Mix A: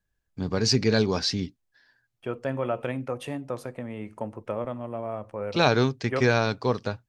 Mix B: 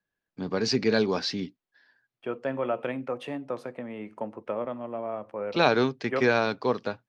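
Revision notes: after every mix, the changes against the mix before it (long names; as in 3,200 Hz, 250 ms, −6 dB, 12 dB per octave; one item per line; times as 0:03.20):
master: add three-way crossover with the lows and the highs turned down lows −21 dB, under 160 Hz, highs −13 dB, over 4,700 Hz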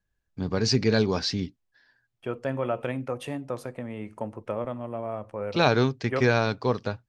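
first voice: add high-frequency loss of the air 52 metres
master: remove three-way crossover with the lows and the highs turned down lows −21 dB, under 160 Hz, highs −13 dB, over 4,700 Hz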